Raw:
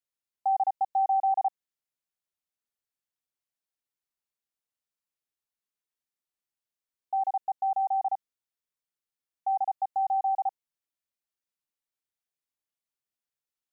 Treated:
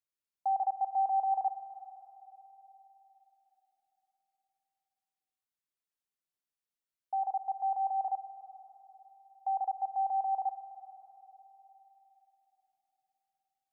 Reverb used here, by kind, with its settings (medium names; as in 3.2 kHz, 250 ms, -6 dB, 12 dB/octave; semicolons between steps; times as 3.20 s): spring tank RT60 3.9 s, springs 51/60 ms, chirp 50 ms, DRR 10.5 dB; trim -4.5 dB